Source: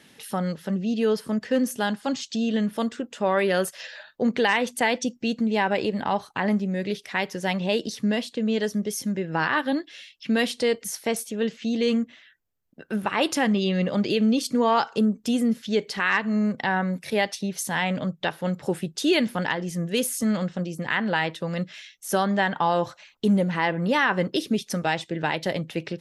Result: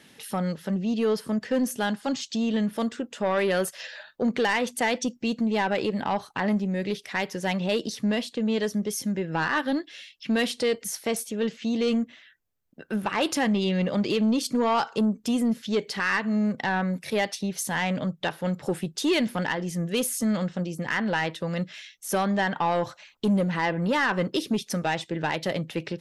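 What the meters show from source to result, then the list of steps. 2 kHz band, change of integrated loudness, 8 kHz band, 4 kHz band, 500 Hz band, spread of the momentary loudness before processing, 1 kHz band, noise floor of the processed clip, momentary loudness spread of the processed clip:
-2.0 dB, -1.5 dB, -0.5 dB, -2.0 dB, -1.5 dB, 7 LU, -2.0 dB, -58 dBFS, 6 LU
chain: soft clip -16.5 dBFS, distortion -17 dB

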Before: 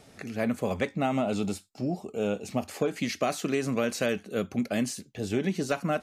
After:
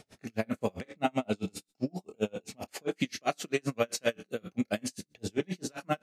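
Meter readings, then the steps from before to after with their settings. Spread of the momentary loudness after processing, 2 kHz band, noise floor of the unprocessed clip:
9 LU, -3.5 dB, -56 dBFS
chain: bell 4100 Hz +2.5 dB 2.2 oct; notch 1200 Hz, Q 29; on a send: flutter echo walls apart 4.7 m, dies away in 0.2 s; on the sum: dB-linear tremolo 7.6 Hz, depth 39 dB; gain +2 dB

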